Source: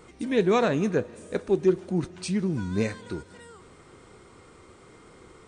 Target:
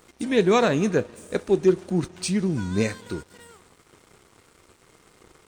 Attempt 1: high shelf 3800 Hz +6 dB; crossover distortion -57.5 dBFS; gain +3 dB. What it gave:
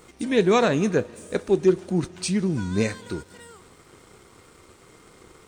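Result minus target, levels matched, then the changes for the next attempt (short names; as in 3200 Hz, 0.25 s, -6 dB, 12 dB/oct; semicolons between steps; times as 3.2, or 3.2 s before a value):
crossover distortion: distortion -6 dB
change: crossover distortion -51 dBFS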